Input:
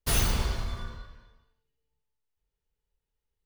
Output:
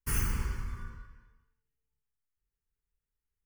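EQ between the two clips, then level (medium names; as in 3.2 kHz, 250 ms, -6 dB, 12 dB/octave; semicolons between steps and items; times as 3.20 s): static phaser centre 1.6 kHz, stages 4; -4.0 dB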